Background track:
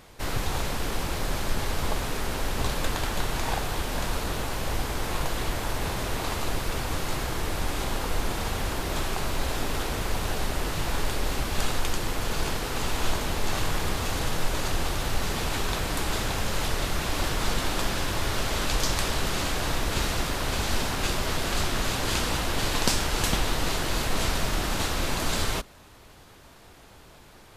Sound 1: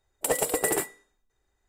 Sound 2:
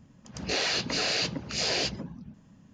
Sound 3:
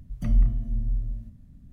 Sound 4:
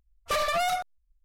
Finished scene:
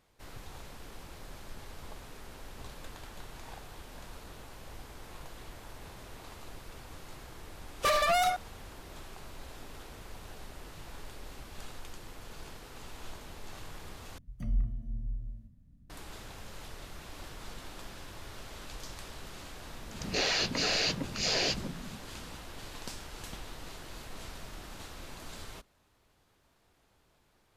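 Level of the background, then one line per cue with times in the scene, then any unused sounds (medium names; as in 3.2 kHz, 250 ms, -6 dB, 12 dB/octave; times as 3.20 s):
background track -18.5 dB
7.54 s: add 4
14.18 s: replace with 3 -10 dB
19.65 s: add 2 -1.5 dB
not used: 1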